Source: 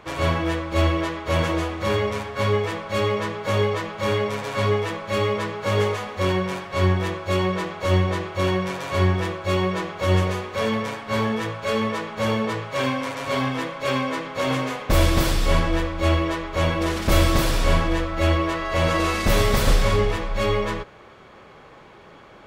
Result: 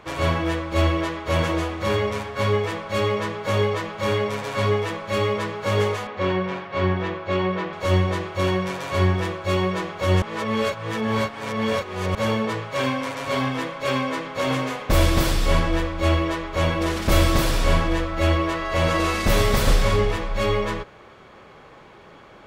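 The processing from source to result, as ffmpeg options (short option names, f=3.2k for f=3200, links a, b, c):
-filter_complex "[0:a]asettb=1/sr,asplit=3[a][b][c];[a]atrim=end=6.074[d];[b]atrim=start=6.07:end=7.73,asetpts=PTS-STARTPTS,afade=t=in:d=0.004:c=qsin,afade=t=out:st=1.656:d=0.004:c=qsin,highpass=110,lowpass=3.3k[e];[c]atrim=start=7.726[f];[d][e]acrossfade=d=0.004:c1=hsin:c2=qsin[g];[g][f]acrossfade=d=0.004:c1=qsin:c2=hsin,asplit=3[h][i][j];[h]atrim=end=10.222[k];[i]atrim=start=10.218:end=12.152,asetpts=PTS-STARTPTS,areverse[l];[j]atrim=start=12.148[m];[k][l]acrossfade=d=0.004:c1=hsin:c2=hsin[n];[n][m]acrossfade=d=0.004:c1=hsin:c2=hsin"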